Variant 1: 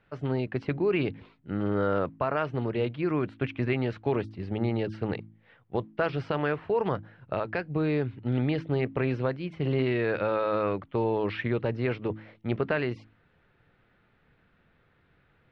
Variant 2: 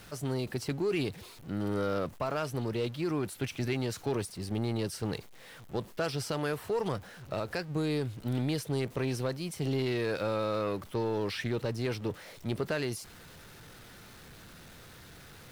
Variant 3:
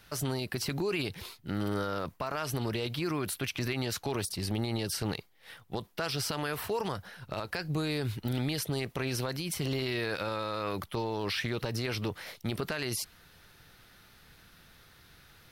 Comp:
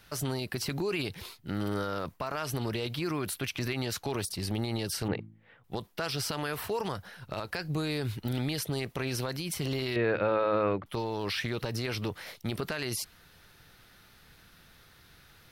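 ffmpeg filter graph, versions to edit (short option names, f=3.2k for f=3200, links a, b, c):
-filter_complex "[0:a]asplit=2[a][b];[2:a]asplit=3[c][d][e];[c]atrim=end=5.082[f];[a]atrim=start=5.078:end=5.642[g];[d]atrim=start=5.638:end=9.962[h];[b]atrim=start=9.958:end=10.862[i];[e]atrim=start=10.858[j];[f][g]acrossfade=d=0.004:c1=hsin:c2=hsin[k];[k][h]acrossfade=d=0.004:c1=hsin:c2=hsin[l];[l][i]acrossfade=d=0.004:c1=hsin:c2=hsin[m];[m][j]acrossfade=d=0.004:c1=hsin:c2=hsin"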